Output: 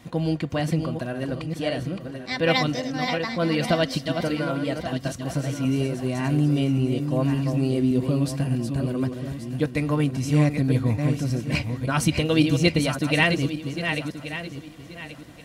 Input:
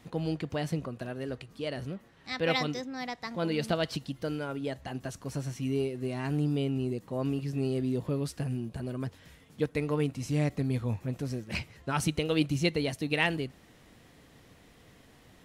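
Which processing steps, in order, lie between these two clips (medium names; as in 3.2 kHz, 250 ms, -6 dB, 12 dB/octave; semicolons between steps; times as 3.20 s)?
backward echo that repeats 565 ms, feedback 49%, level -6.5 dB; comb of notches 430 Hz; trim +8 dB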